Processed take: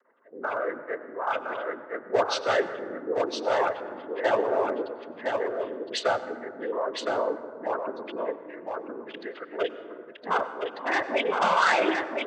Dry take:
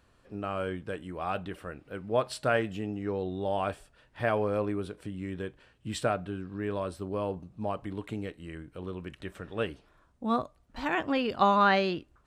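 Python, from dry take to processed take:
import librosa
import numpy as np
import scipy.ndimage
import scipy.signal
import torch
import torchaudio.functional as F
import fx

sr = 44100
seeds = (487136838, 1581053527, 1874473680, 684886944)

y = scipy.signal.sosfilt(scipy.signal.butter(2, 4400.0, 'lowpass', fs=sr, output='sos'), x)
y = fx.spec_gate(y, sr, threshold_db=-15, keep='strong')
y = scipy.signal.sosfilt(scipy.signal.butter(4, 370.0, 'highpass', fs=sr, output='sos'), y)
y = fx.high_shelf(y, sr, hz=2400.0, db=10.0)
y = np.clip(y, -10.0 ** (-24.0 / 20.0), 10.0 ** (-24.0 / 20.0))
y = fx.noise_vocoder(y, sr, seeds[0], bands=16)
y = y + 10.0 ** (-4.5 / 20.0) * np.pad(y, (int(1013 * sr / 1000.0), 0))[:len(y)]
y = fx.rev_plate(y, sr, seeds[1], rt60_s=2.1, hf_ratio=0.35, predelay_ms=80, drr_db=12.5)
y = y * librosa.db_to_amplitude(5.5)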